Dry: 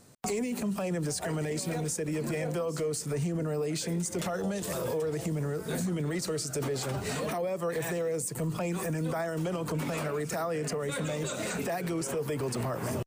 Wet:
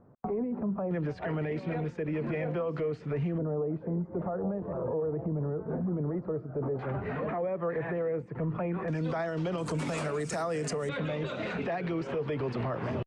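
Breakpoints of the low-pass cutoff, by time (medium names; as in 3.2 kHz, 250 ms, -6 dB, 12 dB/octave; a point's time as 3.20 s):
low-pass 24 dB/octave
1.2 kHz
from 0.91 s 2.7 kHz
from 3.38 s 1.1 kHz
from 6.79 s 2 kHz
from 8.88 s 4.7 kHz
from 9.58 s 9 kHz
from 10.89 s 3.5 kHz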